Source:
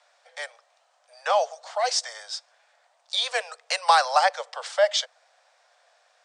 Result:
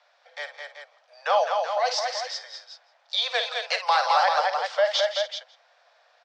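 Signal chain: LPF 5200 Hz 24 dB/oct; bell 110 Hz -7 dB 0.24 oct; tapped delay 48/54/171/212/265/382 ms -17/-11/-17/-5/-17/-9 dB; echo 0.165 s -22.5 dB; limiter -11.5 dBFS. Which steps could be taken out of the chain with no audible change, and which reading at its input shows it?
bell 110 Hz: input band starts at 430 Hz

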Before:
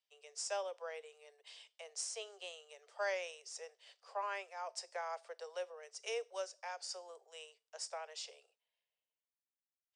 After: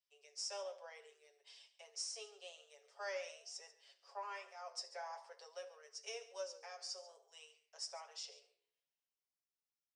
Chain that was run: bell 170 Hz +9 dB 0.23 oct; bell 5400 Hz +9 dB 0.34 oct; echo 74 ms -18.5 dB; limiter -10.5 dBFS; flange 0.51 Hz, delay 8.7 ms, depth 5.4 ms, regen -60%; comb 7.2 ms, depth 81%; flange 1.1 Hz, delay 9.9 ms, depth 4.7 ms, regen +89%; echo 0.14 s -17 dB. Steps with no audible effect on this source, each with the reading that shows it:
bell 170 Hz: input band starts at 340 Hz; limiter -10.5 dBFS: input peak -24.0 dBFS

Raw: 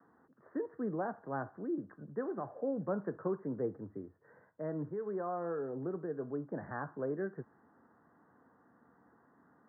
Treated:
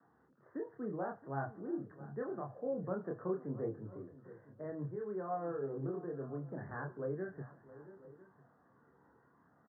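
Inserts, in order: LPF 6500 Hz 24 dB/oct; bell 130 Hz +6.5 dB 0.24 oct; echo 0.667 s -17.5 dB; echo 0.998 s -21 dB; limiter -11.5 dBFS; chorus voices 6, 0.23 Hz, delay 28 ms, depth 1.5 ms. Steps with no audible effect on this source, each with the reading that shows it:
LPF 6500 Hz: input band ends at 1800 Hz; limiter -11.5 dBFS: input peak -23.5 dBFS

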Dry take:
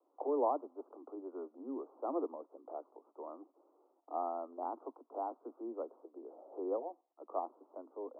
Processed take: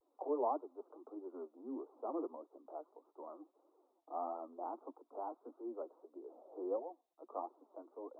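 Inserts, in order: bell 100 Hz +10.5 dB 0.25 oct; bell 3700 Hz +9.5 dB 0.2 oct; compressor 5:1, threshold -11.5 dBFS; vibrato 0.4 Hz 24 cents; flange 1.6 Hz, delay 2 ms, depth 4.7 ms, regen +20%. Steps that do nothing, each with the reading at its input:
bell 100 Hz: input band starts at 210 Hz; bell 3700 Hz: input band ends at 1400 Hz; compressor, threshold -11.5 dBFS: input peak -21.0 dBFS

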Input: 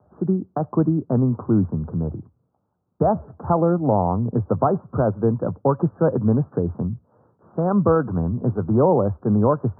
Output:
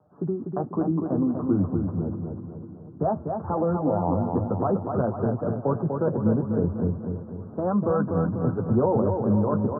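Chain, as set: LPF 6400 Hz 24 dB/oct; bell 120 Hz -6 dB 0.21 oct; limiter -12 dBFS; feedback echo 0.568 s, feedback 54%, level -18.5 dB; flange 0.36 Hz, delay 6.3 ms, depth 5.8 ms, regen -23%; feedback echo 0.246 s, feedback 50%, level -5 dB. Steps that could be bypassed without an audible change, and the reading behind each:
LPF 6400 Hz: input band ends at 1400 Hz

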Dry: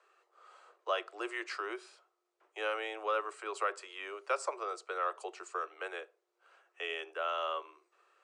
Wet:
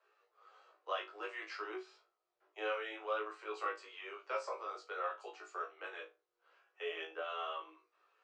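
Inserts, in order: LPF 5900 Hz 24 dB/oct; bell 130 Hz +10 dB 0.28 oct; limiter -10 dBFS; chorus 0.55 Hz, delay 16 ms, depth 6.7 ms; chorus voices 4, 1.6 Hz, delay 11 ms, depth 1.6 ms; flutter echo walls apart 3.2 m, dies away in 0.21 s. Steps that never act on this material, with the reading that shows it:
bell 130 Hz: input band starts at 290 Hz; limiter -10 dBFS: input peak -19.5 dBFS

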